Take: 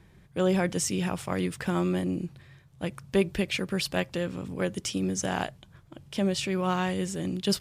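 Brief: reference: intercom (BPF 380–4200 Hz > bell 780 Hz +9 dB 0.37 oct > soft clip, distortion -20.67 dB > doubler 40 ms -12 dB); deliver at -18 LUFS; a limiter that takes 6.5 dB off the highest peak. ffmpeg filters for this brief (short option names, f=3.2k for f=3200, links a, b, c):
-filter_complex "[0:a]alimiter=limit=-19dB:level=0:latency=1,highpass=380,lowpass=4.2k,equalizer=f=780:t=o:w=0.37:g=9,asoftclip=threshold=-18dB,asplit=2[a][b];[b]adelay=40,volume=-12dB[c];[a][c]amix=inputs=2:normalize=0,volume=16dB"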